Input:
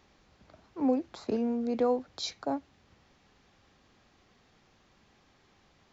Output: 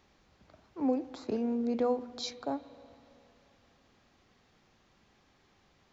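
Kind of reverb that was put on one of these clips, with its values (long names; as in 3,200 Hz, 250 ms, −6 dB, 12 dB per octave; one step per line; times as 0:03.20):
spring reverb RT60 2.9 s, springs 38/45/55 ms, chirp 40 ms, DRR 15 dB
level −2.5 dB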